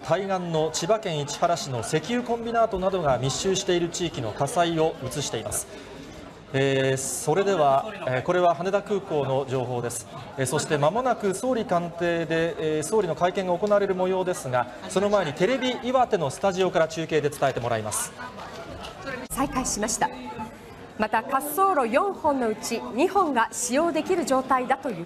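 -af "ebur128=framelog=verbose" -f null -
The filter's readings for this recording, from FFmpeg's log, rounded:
Integrated loudness:
  I:         -24.8 LUFS
  Threshold: -35.2 LUFS
Loudness range:
  LRA:         3.3 LU
  Threshold: -45.2 LUFS
  LRA low:   -27.1 LUFS
  LRA high:  -23.9 LUFS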